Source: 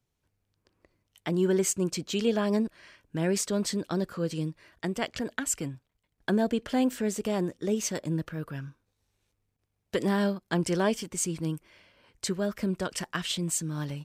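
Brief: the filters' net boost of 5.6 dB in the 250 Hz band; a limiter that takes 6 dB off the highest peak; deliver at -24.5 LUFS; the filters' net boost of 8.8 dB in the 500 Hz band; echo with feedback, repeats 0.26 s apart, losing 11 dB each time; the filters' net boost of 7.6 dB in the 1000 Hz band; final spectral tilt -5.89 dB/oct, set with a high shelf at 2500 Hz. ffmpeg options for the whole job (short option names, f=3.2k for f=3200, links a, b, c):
-af "equalizer=f=250:t=o:g=5,equalizer=f=500:t=o:g=8.5,equalizer=f=1k:t=o:g=7,highshelf=f=2.5k:g=-5,alimiter=limit=-13dB:level=0:latency=1,aecho=1:1:260|520|780:0.282|0.0789|0.0221,volume=0.5dB"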